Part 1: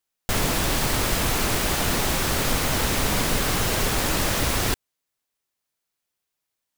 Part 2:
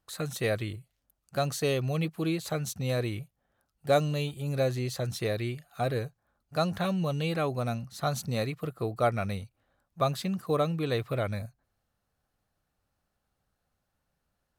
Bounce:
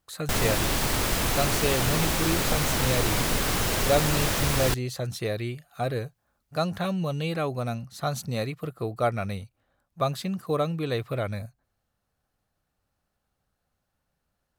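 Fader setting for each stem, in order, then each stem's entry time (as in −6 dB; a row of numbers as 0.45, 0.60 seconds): −2.5, +1.0 decibels; 0.00, 0.00 seconds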